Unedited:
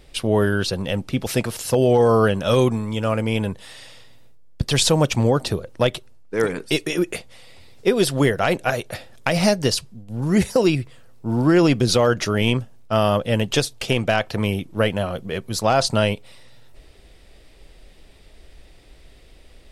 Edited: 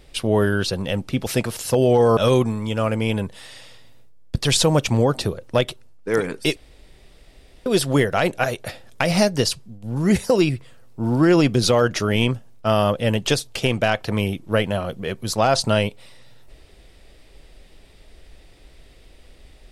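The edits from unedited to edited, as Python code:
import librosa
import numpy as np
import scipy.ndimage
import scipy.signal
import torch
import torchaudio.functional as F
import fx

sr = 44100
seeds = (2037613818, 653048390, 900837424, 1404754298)

y = fx.edit(x, sr, fx.cut(start_s=2.17, length_s=0.26),
    fx.room_tone_fill(start_s=6.82, length_s=1.1), tone=tone)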